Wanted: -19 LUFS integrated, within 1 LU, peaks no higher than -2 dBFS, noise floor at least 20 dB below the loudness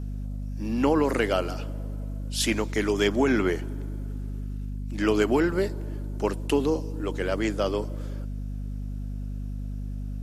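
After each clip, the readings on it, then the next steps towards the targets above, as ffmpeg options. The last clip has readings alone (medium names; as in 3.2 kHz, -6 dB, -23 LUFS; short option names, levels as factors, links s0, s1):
hum 50 Hz; highest harmonic 250 Hz; hum level -30 dBFS; loudness -28.0 LUFS; peak level -9.5 dBFS; loudness target -19.0 LUFS
-> -af "bandreject=f=50:t=h:w=6,bandreject=f=100:t=h:w=6,bandreject=f=150:t=h:w=6,bandreject=f=200:t=h:w=6,bandreject=f=250:t=h:w=6"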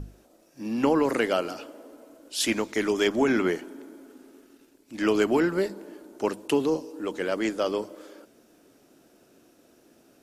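hum not found; loudness -26.5 LUFS; peak level -10.5 dBFS; loudness target -19.0 LUFS
-> -af "volume=2.37"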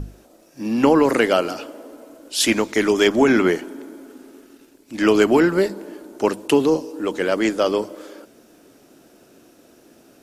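loudness -19.0 LUFS; peak level -3.0 dBFS; noise floor -53 dBFS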